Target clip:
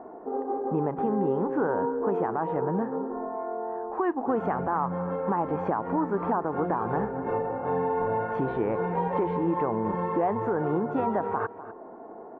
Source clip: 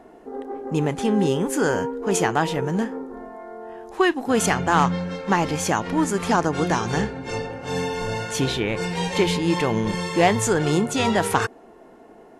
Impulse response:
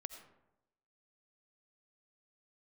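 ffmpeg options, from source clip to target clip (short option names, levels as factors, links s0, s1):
-filter_complex "[0:a]lowpass=f=1200:w=0.5412,lowpass=f=1200:w=1.3066,aemphasis=mode=production:type=bsi,acompressor=threshold=0.0224:ratio=2,equalizer=f=950:t=o:w=0.77:g=2,alimiter=limit=0.075:level=0:latency=1:release=66,asplit=2[s0][s1];[s1]aecho=0:1:250:0.178[s2];[s0][s2]amix=inputs=2:normalize=0,volume=1.88"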